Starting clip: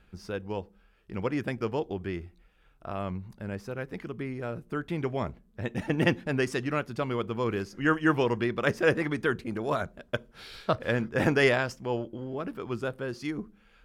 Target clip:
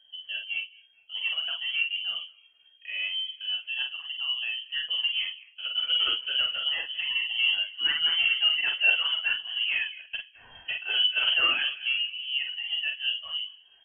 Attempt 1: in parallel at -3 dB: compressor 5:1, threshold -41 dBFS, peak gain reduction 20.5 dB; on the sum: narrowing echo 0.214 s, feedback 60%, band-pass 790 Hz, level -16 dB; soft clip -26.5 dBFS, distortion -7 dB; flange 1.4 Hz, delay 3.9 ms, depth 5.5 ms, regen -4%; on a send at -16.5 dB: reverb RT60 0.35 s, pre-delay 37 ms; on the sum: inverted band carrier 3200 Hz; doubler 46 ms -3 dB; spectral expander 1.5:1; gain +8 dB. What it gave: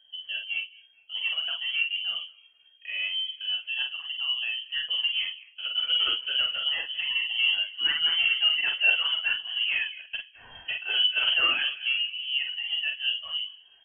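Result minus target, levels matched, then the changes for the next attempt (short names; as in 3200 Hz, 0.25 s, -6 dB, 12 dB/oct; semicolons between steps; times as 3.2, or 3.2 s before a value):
compressor: peak gain reduction -7.5 dB
change: compressor 5:1, threshold -50.5 dBFS, peak gain reduction 28 dB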